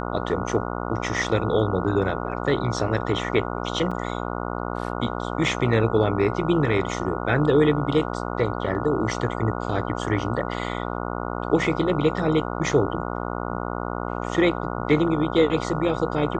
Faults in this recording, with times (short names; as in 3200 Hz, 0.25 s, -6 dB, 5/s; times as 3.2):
buzz 60 Hz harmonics 24 -29 dBFS
3.91 gap 4.9 ms